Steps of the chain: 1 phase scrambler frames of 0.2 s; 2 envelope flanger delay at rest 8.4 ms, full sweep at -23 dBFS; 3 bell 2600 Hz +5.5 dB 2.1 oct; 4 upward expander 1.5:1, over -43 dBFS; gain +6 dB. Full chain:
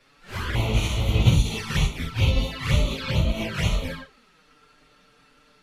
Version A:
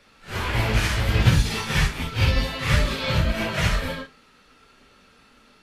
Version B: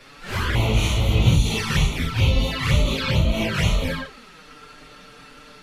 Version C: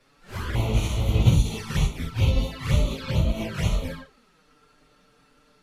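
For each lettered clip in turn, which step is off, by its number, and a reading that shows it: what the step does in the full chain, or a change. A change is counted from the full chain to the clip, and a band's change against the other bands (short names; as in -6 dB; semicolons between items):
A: 2, 2 kHz band +3.5 dB; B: 4, crest factor change -3.0 dB; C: 3, 2 kHz band -4.0 dB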